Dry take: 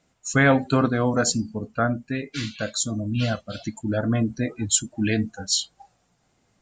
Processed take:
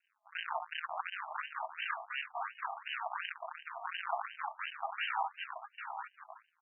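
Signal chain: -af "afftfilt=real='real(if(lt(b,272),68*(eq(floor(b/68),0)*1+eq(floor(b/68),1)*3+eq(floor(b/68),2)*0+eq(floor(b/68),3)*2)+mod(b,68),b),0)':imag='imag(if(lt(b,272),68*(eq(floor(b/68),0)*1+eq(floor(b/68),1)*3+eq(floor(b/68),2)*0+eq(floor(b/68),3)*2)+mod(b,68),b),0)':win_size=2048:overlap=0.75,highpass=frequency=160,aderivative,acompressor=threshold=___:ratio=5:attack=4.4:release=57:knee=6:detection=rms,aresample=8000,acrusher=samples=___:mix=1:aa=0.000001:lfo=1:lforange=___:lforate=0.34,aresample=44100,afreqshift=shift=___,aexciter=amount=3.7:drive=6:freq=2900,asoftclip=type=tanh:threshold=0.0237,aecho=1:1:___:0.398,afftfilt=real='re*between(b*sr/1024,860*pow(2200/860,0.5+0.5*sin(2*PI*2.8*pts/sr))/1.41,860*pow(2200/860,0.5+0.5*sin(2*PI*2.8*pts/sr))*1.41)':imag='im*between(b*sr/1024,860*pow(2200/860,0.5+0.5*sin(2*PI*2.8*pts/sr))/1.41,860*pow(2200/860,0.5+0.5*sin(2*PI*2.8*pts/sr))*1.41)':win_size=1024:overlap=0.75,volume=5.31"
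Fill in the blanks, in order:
0.0447, 33, 33, 170, 799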